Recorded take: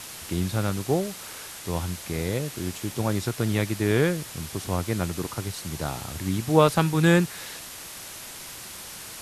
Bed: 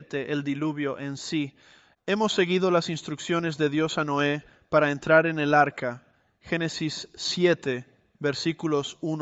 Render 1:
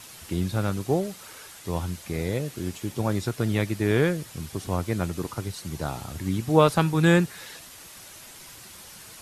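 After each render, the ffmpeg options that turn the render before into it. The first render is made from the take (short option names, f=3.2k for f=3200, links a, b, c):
-af "afftdn=nr=7:nf=-40"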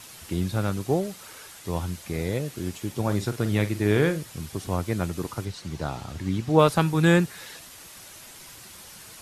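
-filter_complex "[0:a]asettb=1/sr,asplit=3[a][b][c];[a]atrim=end=3.034[d];[b]atrim=start=3.03:end=4.19,asetpts=PTS-STARTPTS,afade=t=in:d=0.004:c=qsin,afade=t=out:st=1.156:d=0.004:c=qsin,asplit=2[e][f];[f]adelay=48,volume=-11.5dB[g];[e][g]amix=inputs=2:normalize=0,atrim=end_sample=51156[h];[c]atrim=start=4.186[i];[d][h]acrossfade=d=0.004:c1=hsin:c2=qsin[j];[j][i]acrossfade=d=0.004:c1=qsin:c2=hsin,asettb=1/sr,asplit=3[k][l][m];[k]atrim=end=5.454[n];[l]atrim=start=5.45:end=6.59,asetpts=PTS-STARTPTS,afade=t=in:d=0.004:c=qsin,afade=t=out:st=1.136:d=0.004:c=qsin,acrossover=split=6800[o][p];[p]acompressor=threshold=-58dB:ratio=4:attack=1:release=60[q];[o][q]amix=inputs=2:normalize=0[r];[m]atrim=start=6.586[s];[n][r]acrossfade=d=0.004:c1=hsin:c2=qsin[t];[t][s]acrossfade=d=0.004:c1=qsin:c2=hsin"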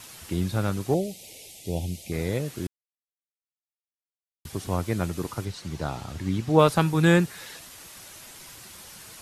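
-filter_complex "[0:a]asettb=1/sr,asplit=3[a][b][c];[a]atrim=end=0.944[d];[b]atrim=start=0.94:end=2.12,asetpts=PTS-STARTPTS,afade=t=in:d=0.004:c=qsin,afade=t=out:st=1.176:d=0.004:c=qsin,asuperstop=centerf=1300:order=8:qfactor=0.9[e];[c]atrim=start=2.116[f];[d][e]acrossfade=d=0.004:c1=hsin:c2=qsin[g];[g][f]acrossfade=d=0.004:c1=qsin:c2=hsin,asplit=3[h][i][j];[h]atrim=end=2.67,asetpts=PTS-STARTPTS,afade=t=out:st=2.666:d=0.004:c=hsin[k];[i]atrim=start=2.67:end=4.45,asetpts=PTS-STARTPTS,volume=0[l];[j]atrim=start=4.45,asetpts=PTS-STARTPTS,afade=t=in:d=0.004:c=hsin[m];[k][l][m]concat=n=3:v=0:a=1"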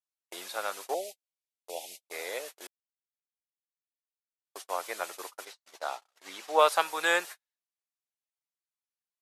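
-af "agate=range=-55dB:threshold=-31dB:ratio=16:detection=peak,highpass=f=580:w=0.5412,highpass=f=580:w=1.3066"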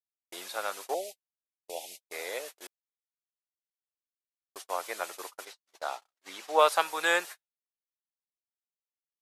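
-af "agate=range=-33dB:threshold=-46dB:ratio=3:detection=peak"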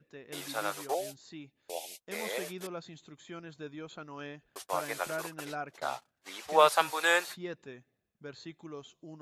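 -filter_complex "[1:a]volume=-19dB[a];[0:a][a]amix=inputs=2:normalize=0"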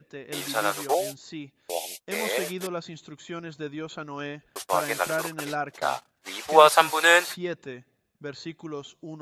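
-af "volume=8.5dB,alimiter=limit=-2dB:level=0:latency=1"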